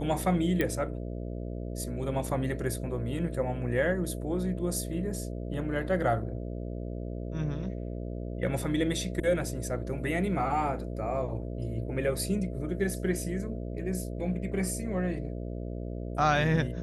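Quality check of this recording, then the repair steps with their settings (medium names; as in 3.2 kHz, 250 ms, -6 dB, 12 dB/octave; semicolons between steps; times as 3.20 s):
buzz 60 Hz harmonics 11 -36 dBFS
0.61 s: pop -15 dBFS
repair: de-click; de-hum 60 Hz, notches 11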